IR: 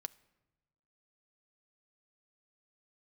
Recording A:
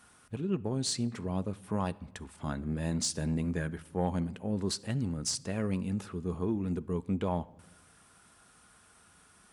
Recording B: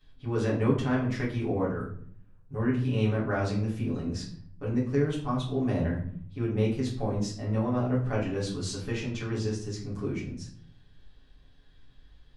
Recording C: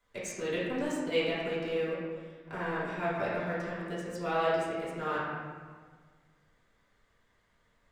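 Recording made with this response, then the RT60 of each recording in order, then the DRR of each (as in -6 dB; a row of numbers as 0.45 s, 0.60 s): A; 1.1 s, 0.55 s, 1.6 s; 13.0 dB, -10.0 dB, -11.0 dB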